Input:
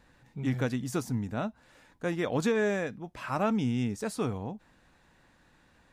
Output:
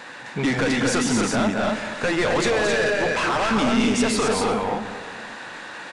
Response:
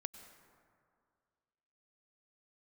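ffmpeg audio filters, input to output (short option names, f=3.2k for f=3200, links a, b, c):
-filter_complex "[0:a]highpass=f=660:p=1,asplit=2[a][b];[b]highpass=f=720:p=1,volume=25dB,asoftclip=type=tanh:threshold=-17.5dB[c];[a][c]amix=inputs=2:normalize=0,lowpass=f=4.2k:p=1,volume=-6dB,acompressor=threshold=-28dB:ratio=6,aecho=1:1:221.6|262.4:0.562|0.631,asoftclip=type=tanh:threshold=-29.5dB,asplit=2[d][e];[1:a]atrim=start_sample=2205,lowshelf=f=410:g=11[f];[e][f]afir=irnorm=-1:irlink=0,volume=9.5dB[g];[d][g]amix=inputs=2:normalize=0,aresample=22050,aresample=44100"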